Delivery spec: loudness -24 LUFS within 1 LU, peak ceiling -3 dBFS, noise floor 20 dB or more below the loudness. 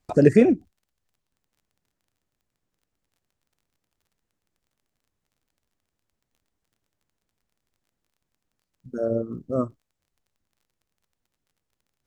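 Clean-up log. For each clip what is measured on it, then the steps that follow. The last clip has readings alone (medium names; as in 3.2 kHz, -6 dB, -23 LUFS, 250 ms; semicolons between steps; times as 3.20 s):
tick rate 24 per s; loudness -22.0 LUFS; peak level -2.0 dBFS; loudness target -24.0 LUFS
-> de-click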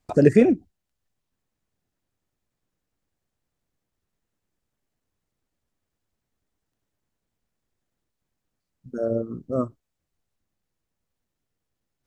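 tick rate 0.083 per s; loudness -22.0 LUFS; peak level -2.0 dBFS; loudness target -24.0 LUFS
-> trim -2 dB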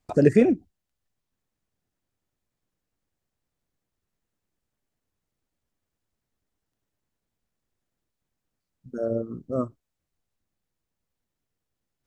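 loudness -24.0 LUFS; peak level -4.0 dBFS; noise floor -84 dBFS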